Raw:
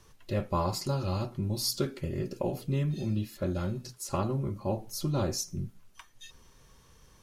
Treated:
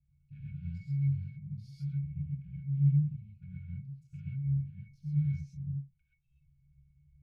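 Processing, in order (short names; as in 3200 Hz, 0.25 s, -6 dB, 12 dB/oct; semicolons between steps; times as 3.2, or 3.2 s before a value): Wiener smoothing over 25 samples; brick-wall FIR band-stop 200–1400 Hz; bell 3000 Hz +5 dB 0.81 oct; octave resonator C#, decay 0.22 s; non-linear reverb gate 0.15 s rising, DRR -5.5 dB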